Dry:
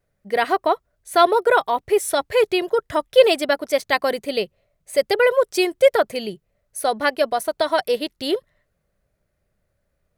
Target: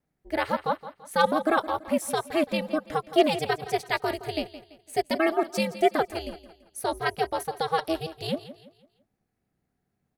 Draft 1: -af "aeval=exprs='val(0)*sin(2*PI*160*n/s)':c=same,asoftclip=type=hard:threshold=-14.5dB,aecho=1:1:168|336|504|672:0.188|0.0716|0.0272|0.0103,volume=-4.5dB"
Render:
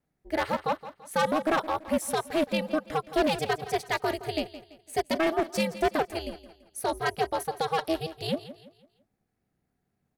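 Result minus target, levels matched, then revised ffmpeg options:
hard clip: distortion +25 dB
-af "aeval=exprs='val(0)*sin(2*PI*160*n/s)':c=same,asoftclip=type=hard:threshold=-4dB,aecho=1:1:168|336|504|672:0.188|0.0716|0.0272|0.0103,volume=-4.5dB"

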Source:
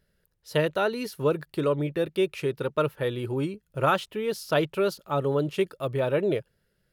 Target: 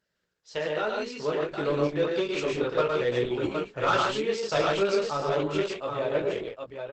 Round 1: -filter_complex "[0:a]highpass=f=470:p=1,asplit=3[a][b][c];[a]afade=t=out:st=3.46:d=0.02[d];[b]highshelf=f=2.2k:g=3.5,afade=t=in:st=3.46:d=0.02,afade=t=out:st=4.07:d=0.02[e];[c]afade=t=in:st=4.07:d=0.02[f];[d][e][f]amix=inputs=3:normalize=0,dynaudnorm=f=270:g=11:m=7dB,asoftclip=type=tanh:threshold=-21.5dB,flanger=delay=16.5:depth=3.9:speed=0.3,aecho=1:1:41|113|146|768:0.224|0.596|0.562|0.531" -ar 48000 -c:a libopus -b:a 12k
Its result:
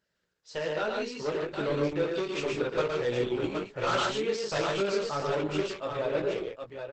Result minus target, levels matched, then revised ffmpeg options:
soft clip: distortion +6 dB
-filter_complex "[0:a]highpass=f=470:p=1,asplit=3[a][b][c];[a]afade=t=out:st=3.46:d=0.02[d];[b]highshelf=f=2.2k:g=3.5,afade=t=in:st=3.46:d=0.02,afade=t=out:st=4.07:d=0.02[e];[c]afade=t=in:st=4.07:d=0.02[f];[d][e][f]amix=inputs=3:normalize=0,dynaudnorm=f=270:g=11:m=7dB,asoftclip=type=tanh:threshold=-14dB,flanger=delay=16.5:depth=3.9:speed=0.3,aecho=1:1:41|113|146|768:0.224|0.596|0.562|0.531" -ar 48000 -c:a libopus -b:a 12k

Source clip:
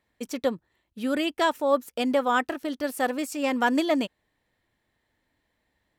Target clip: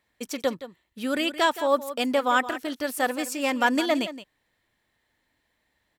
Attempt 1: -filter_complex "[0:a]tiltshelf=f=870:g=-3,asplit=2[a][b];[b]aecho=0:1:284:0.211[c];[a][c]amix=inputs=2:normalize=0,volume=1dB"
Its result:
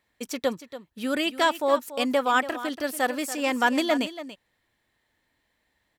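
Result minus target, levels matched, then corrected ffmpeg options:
echo 0.114 s late
-filter_complex "[0:a]tiltshelf=f=870:g=-3,asplit=2[a][b];[b]aecho=0:1:170:0.211[c];[a][c]amix=inputs=2:normalize=0,volume=1dB"

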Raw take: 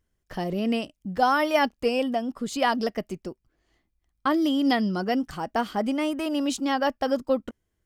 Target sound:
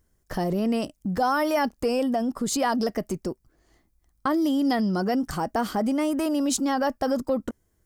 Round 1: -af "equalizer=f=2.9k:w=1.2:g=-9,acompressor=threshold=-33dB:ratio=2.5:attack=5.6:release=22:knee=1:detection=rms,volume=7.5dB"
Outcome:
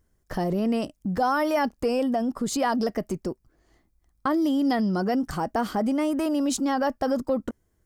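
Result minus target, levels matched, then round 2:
8000 Hz band -3.0 dB
-af "equalizer=f=2.9k:w=1.2:g=-9,acompressor=threshold=-33dB:ratio=2.5:attack=5.6:release=22:knee=1:detection=rms,highshelf=f=4.2k:g=4.5,volume=7.5dB"

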